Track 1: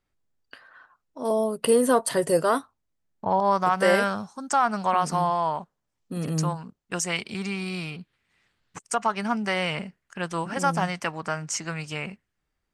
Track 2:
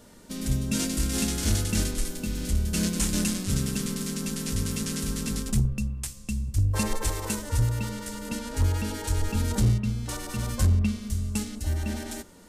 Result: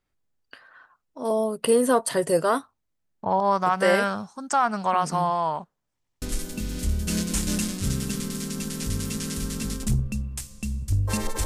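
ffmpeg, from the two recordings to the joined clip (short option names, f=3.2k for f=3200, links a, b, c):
-filter_complex "[0:a]apad=whole_dur=11.45,atrim=end=11.45,asplit=3[a][b][c];[a]atrim=end=6.042[d];[b]atrim=start=5.948:end=6.042[e];[c]atrim=start=5.948:end=6.042[f];[1:a]atrim=start=1.878:end=7.11[g];[d][e]acrossfade=d=0.004:c1=hsin:c2=hsin[h];[h][f]acrossfade=d=0.004:c1=hsin:c2=hsin[i];[i][g]acrossfade=d=0.004:c1=hsin:c2=hsin"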